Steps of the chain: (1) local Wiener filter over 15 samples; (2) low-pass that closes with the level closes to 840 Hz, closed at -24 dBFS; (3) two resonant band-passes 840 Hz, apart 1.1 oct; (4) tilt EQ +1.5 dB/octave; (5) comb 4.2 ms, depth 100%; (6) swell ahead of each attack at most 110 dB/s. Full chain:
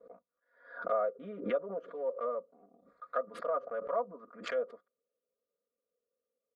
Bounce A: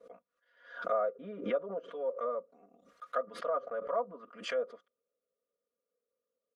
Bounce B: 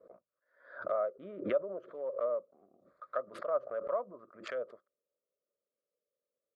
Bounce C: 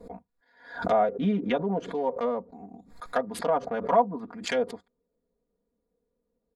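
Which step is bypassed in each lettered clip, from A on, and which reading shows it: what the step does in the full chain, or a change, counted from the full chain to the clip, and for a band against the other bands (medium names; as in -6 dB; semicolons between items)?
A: 1, 4 kHz band +4.0 dB; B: 5, 1 kHz band -3.0 dB; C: 3, 250 Hz band +7.0 dB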